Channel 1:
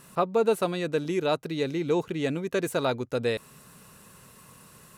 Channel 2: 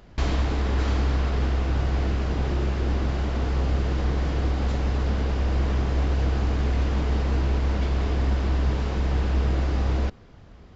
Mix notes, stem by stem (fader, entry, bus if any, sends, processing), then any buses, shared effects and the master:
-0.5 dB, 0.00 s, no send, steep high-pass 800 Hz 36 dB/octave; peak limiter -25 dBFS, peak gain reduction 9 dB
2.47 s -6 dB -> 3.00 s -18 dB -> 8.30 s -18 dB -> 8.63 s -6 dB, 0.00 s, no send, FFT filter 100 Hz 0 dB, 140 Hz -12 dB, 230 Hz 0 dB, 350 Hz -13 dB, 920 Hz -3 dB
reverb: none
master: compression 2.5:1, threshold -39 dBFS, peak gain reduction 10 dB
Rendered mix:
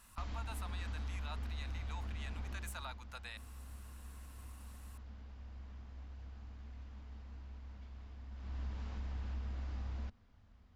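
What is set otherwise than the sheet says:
stem 1 -0.5 dB -> -9.5 dB; stem 2 -6.0 dB -> -14.5 dB

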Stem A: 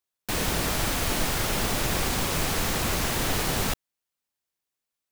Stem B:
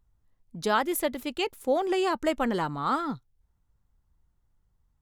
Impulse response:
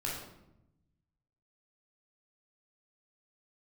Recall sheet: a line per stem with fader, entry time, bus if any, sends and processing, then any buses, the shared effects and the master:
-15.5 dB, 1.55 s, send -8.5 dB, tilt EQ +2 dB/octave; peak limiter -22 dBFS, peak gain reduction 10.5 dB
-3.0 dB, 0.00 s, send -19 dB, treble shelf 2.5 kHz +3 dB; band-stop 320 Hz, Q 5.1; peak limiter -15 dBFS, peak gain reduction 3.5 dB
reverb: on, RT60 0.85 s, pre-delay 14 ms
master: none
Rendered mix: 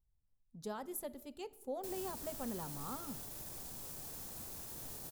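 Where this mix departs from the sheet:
stem B -3.0 dB -> -13.0 dB; master: extra peaking EQ 2.3 kHz -14 dB 2.4 oct

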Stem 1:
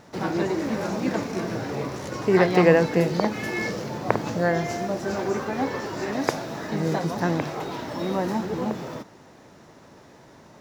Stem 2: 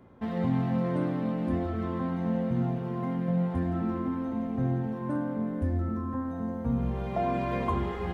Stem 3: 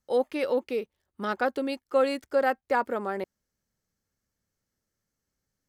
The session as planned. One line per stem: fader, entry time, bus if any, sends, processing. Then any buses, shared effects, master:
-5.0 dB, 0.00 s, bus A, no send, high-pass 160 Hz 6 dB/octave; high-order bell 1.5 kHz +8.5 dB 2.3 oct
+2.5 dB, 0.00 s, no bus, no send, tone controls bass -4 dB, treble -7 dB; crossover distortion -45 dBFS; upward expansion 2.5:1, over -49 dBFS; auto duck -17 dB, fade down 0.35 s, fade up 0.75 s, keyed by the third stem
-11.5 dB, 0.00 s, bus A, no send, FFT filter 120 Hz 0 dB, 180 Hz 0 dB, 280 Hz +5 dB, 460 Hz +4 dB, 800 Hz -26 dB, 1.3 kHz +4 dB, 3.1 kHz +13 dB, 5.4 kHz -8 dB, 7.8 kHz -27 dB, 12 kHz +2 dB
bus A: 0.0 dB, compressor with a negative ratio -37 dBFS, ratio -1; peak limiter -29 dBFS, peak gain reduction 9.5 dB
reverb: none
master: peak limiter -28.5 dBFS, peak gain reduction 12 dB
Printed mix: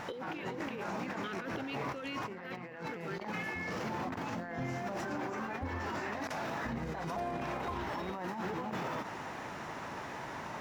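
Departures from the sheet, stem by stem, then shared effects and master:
stem 1: missing high-pass 160 Hz 6 dB/octave; stem 3 -11.5 dB -> -2.0 dB

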